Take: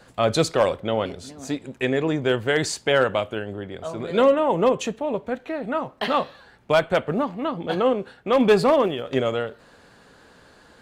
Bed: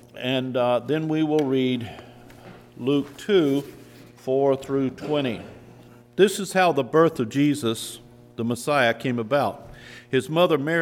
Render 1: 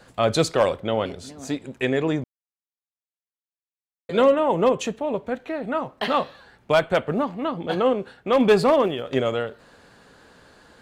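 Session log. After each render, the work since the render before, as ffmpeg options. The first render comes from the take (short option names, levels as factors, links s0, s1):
-filter_complex "[0:a]asplit=3[s0][s1][s2];[s0]atrim=end=2.24,asetpts=PTS-STARTPTS,afade=t=out:st=2.236:d=0.004:c=hsin[s3];[s1]atrim=start=2.24:end=4.09,asetpts=PTS-STARTPTS,volume=0[s4];[s2]atrim=start=4.09,asetpts=PTS-STARTPTS,afade=t=in:d=0.004:c=hsin[s5];[s3][s4][s5]concat=n=3:v=0:a=1"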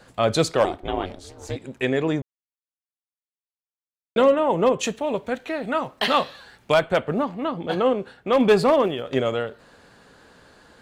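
-filter_complex "[0:a]asettb=1/sr,asplit=3[s0][s1][s2];[s0]atrim=end=0.644[s3];[s1]atrim=start=0.64:end=1.56,asetpts=PTS-STARTPTS,afade=t=in:d=0.004:c=qsin,afade=t=out:st=0.916:d=0.004:c=qsin,aeval=exprs='val(0)*sin(2*PI*180*n/s)':c=same[s4];[s2]atrim=start=1.556[s5];[s3][s4]acrossfade=d=0.004:c1=hsin:c2=qsin[s6];[s6][s5]acrossfade=d=0.004:c1=qsin:c2=hsin,asettb=1/sr,asplit=3[s7][s8][s9];[s7]atrim=end=4.834[s10];[s8]atrim=start=4.83:end=6.74,asetpts=PTS-STARTPTS,afade=t=in:d=0.004:c=qsin,afade=t=out:st=1.906:d=0.004:c=qsin,highshelf=f=2100:g=9.5[s11];[s9]atrim=start=6.736[s12];[s10][s11]acrossfade=d=0.004:c1=hsin:c2=qsin[s13];[s13][s12]acrossfade=d=0.004:c1=qsin:c2=hsin,asplit=3[s14][s15][s16];[s14]atrim=end=2.22,asetpts=PTS-STARTPTS,afade=t=out:st=2.216:d=0.004:c=hsin[s17];[s15]atrim=start=2.22:end=4.16,asetpts=PTS-STARTPTS,volume=0[s18];[s16]atrim=start=4.16,asetpts=PTS-STARTPTS,afade=t=in:d=0.004:c=hsin[s19];[s17][s18][s19]concat=n=3:v=0:a=1"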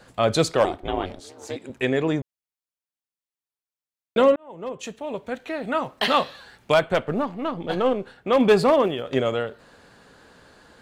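-filter_complex "[0:a]asettb=1/sr,asplit=3[s0][s1][s2];[s0]atrim=end=1.204[s3];[s1]atrim=start=1.2:end=1.7,asetpts=PTS-STARTPTS,afade=t=in:d=0.004:c=qsin,afade=t=out:st=0.496:d=0.004:c=qsin,highpass=190[s4];[s2]atrim=start=1.696[s5];[s3][s4]acrossfade=d=0.004:c1=hsin:c2=qsin[s6];[s6][s5]acrossfade=d=0.004:c1=qsin:c2=hsin,asettb=1/sr,asplit=3[s7][s8][s9];[s7]atrim=end=6.934[s10];[s8]atrim=start=6.93:end=8.16,asetpts=PTS-STARTPTS,afade=t=in:d=0.004:c=qsin,afade=t=out:st=1.226:d=0.004:c=qsin,aeval=exprs='if(lt(val(0),0),0.708*val(0),val(0))':c=same[s11];[s9]atrim=start=8.156[s12];[s10][s11]acrossfade=d=0.004:c1=hsin:c2=qsin[s13];[s13][s12]acrossfade=d=0.004:c1=qsin:c2=hsin,asplit=2[s14][s15];[s14]atrim=end=4.36,asetpts=PTS-STARTPTS,afade=t=out:st=4.356:d=0.004:c=hsin[s16];[s15]atrim=start=4.36,asetpts=PTS-STARTPTS,afade=t=in:d=1.45[s17];[s16][s17]concat=n=2:v=0:a=1"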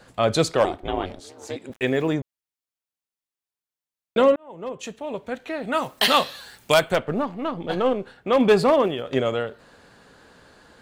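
-filter_complex "[0:a]asplit=3[s0][s1][s2];[s0]afade=t=out:st=1.71:d=0.02[s3];[s1]aeval=exprs='val(0)*gte(abs(val(0)),0.00668)':c=same,afade=t=in:st=1.71:d=0.02,afade=t=out:st=2.13:d=0.02[s4];[s2]afade=t=in:st=2.13:d=0.02[s5];[s3][s4][s5]amix=inputs=3:normalize=0,asplit=3[s6][s7][s8];[s6]afade=t=out:st=5.72:d=0.02[s9];[s7]aemphasis=mode=production:type=75kf,afade=t=in:st=5.72:d=0.02,afade=t=out:st=6.94:d=0.02[s10];[s8]afade=t=in:st=6.94:d=0.02[s11];[s9][s10][s11]amix=inputs=3:normalize=0"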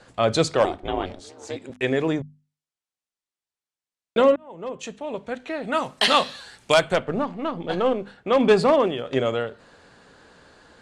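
-af "lowpass=f=9400:w=0.5412,lowpass=f=9400:w=1.3066,bandreject=f=50:t=h:w=6,bandreject=f=100:t=h:w=6,bandreject=f=150:t=h:w=6,bandreject=f=200:t=h:w=6,bandreject=f=250:t=h:w=6"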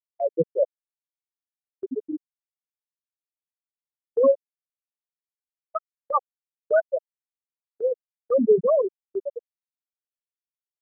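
-af "afftfilt=real='re*gte(hypot(re,im),0.794)':imag='im*gte(hypot(re,im),0.794)':win_size=1024:overlap=0.75,agate=range=0.178:threshold=0.00891:ratio=16:detection=peak"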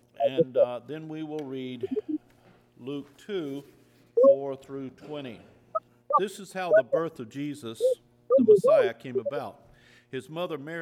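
-filter_complex "[1:a]volume=0.211[s0];[0:a][s0]amix=inputs=2:normalize=0"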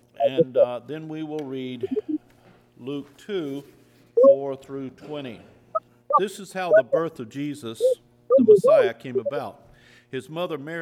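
-af "volume=1.58"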